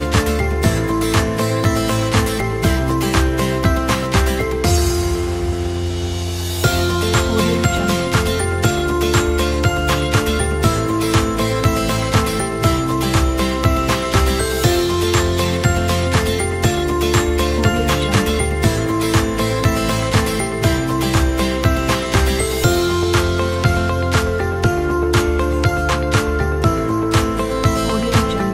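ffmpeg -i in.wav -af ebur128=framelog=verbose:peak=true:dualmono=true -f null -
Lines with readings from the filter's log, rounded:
Integrated loudness:
  I:         -14.1 LUFS
  Threshold: -24.1 LUFS
Loudness range:
  LRA:         1.2 LU
  Threshold: -34.1 LUFS
  LRA low:   -14.8 LUFS
  LRA high:  -13.7 LUFS
True peak:
  Peak:       -1.6 dBFS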